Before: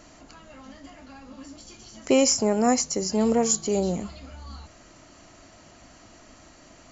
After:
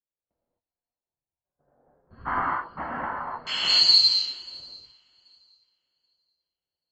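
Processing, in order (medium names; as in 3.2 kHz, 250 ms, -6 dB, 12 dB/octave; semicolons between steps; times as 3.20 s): split-band scrambler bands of 4 kHz; level-controlled noise filter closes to 700 Hz, open at -21 dBFS; gate -57 dBFS, range -13 dB; 0.86–3.47 s: low-pass 1.3 kHz 24 dB/octave; dynamic bell 860 Hz, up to +4 dB, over -45 dBFS, Q 0.88; peak limiter -19 dBFS, peak gain reduction 9.5 dB; shuffle delay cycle 781 ms, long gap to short 3:1, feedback 34%, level -17.5 dB; gated-style reverb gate 290 ms flat, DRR -7.5 dB; three bands expanded up and down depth 70%; trim -4.5 dB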